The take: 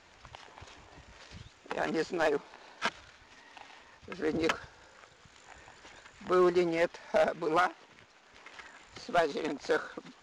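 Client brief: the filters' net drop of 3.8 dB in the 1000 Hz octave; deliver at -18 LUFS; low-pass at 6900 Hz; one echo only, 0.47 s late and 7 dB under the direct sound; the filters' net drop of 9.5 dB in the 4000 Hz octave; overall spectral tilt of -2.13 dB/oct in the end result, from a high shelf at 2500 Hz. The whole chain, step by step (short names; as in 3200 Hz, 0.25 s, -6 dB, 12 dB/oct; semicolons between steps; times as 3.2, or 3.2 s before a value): LPF 6900 Hz; bell 1000 Hz -4 dB; high shelf 2500 Hz -6.5 dB; bell 4000 Hz -6.5 dB; echo 0.47 s -7 dB; gain +15 dB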